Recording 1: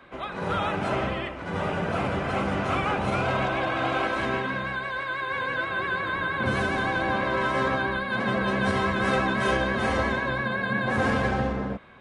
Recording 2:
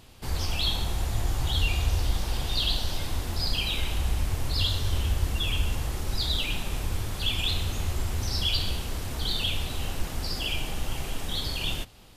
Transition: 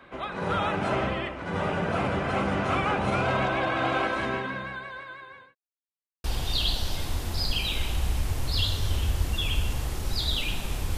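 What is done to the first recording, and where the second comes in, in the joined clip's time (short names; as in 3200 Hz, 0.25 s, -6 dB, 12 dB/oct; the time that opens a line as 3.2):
recording 1
3.95–5.55 fade out linear
5.55–6.24 mute
6.24 switch to recording 2 from 2.26 s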